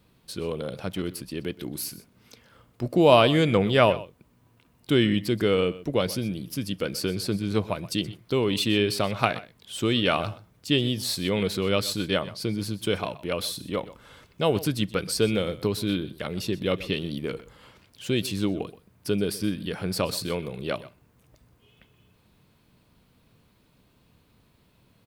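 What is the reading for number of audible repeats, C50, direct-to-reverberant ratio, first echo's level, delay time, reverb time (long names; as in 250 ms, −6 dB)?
1, no reverb audible, no reverb audible, −17.5 dB, 125 ms, no reverb audible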